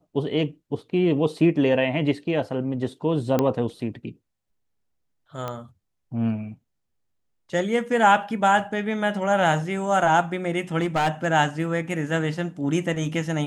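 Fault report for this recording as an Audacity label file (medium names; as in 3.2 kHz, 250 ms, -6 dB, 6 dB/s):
3.390000	3.390000	pop -9 dBFS
5.480000	5.480000	pop -17 dBFS
10.780000	11.270000	clipped -17.5 dBFS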